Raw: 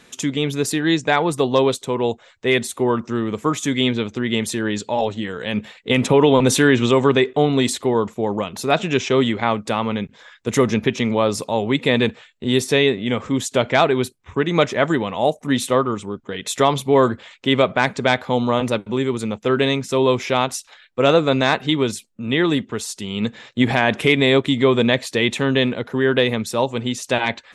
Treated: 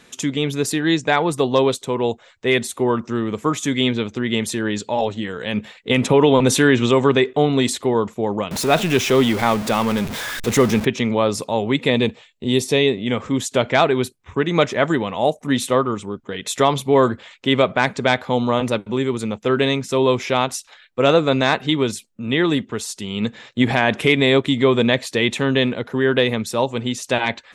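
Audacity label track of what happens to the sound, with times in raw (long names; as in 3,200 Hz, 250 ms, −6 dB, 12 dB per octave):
8.510000	10.850000	converter with a step at zero of −22.5 dBFS
11.900000	13.070000	parametric band 1,500 Hz −9.5 dB 0.58 octaves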